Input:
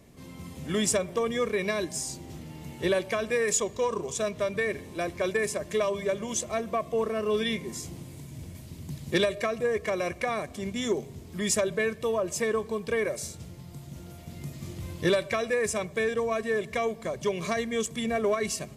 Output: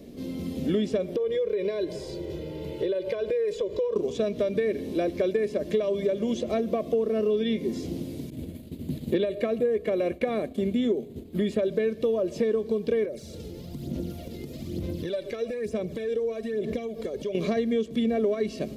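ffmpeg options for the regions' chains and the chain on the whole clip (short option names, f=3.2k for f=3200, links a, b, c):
-filter_complex "[0:a]asettb=1/sr,asplit=3[a][b][c];[a]atrim=end=1.164[d];[b]atrim=start=1.16:end=3.96,asetpts=PTS-STARTPTS,afade=t=in:d=0.004:c=qsin,afade=t=out:st=2.796:d=0.004:c=qsin,bass=f=250:g=-4,treble=f=4k:g=-11,aecho=1:1:2:0.98,atrim=end_sample=123480,acompressor=threshold=-34dB:ratio=6:attack=3.2:release=140:knee=1:detection=peak[e];[c]atrim=start=3.956[f];[d][e]acrossfade=d=0.004:c1=hsin:c2=qsin[g];[g][f]acrossfade=d=0.004:c1=qsin:c2=hsin,asettb=1/sr,asplit=3[h][i][j];[h]atrim=end=8.304[k];[i]atrim=start=8.3:end=11.63,asetpts=PTS-STARTPTS,afade=t=in:d=0.004:c=qsin,afade=t=out:st=3.326:d=0.004:c=qsin,equalizer=f=5.5k:w=2.7:g=-11.5,agate=range=-33dB:threshold=-39dB:ratio=3:release=100:detection=peak[l];[j]atrim=start=11.626[m];[k][l]acrossfade=d=0.004:c1=hsin:c2=qsin[n];[n][m]acrossfade=d=0.004:c1=qsin:c2=hsin,asettb=1/sr,asplit=3[o][p][q];[o]atrim=end=13.044[r];[p]atrim=start=13.04:end=17.35,asetpts=PTS-STARTPTS,afade=t=in:d=0.004:c=qsin,afade=t=out:st=4.306:d=0.004:c=qsin,acompressor=threshold=-40dB:ratio=5:attack=3.2:release=140:knee=1:detection=peak,aphaser=in_gain=1:out_gain=1:delay=2.4:decay=0.51:speed=1.1:type=sinusoidal[s];[q]atrim=start=17.346[t];[r][s]acrossfade=d=0.004:c1=hsin:c2=qsin[u];[u][t]acrossfade=d=0.004:c1=qsin:c2=hsin,acrossover=split=3800[v][w];[w]acompressor=threshold=-51dB:ratio=4:attack=1:release=60[x];[v][x]amix=inputs=2:normalize=0,equalizer=f=125:t=o:w=1:g=-7,equalizer=f=250:t=o:w=1:g=9,equalizer=f=500:t=o:w=1:g=7,equalizer=f=1k:t=o:w=1:g=-11,equalizer=f=2k:t=o:w=1:g=-5,equalizer=f=4k:t=o:w=1:g=4,equalizer=f=8k:t=o:w=1:g=-9,acompressor=threshold=-29dB:ratio=5,volume=6dB"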